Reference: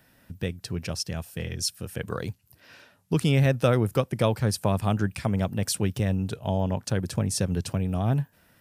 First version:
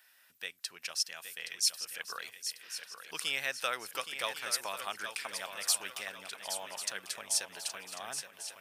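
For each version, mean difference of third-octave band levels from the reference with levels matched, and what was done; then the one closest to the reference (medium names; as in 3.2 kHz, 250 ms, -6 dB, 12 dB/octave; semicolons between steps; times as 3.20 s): 15.0 dB: high-pass 1.5 kHz 12 dB/octave; hard clipper -16 dBFS, distortion -42 dB; shuffle delay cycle 1094 ms, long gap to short 3:1, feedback 39%, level -9 dB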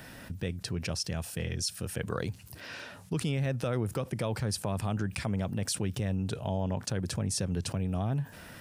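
4.5 dB: peaking EQ 13 kHz -14 dB 0.2 oct; peak limiter -16 dBFS, peak gain reduction 7.5 dB; level flattener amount 50%; trim -6.5 dB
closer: second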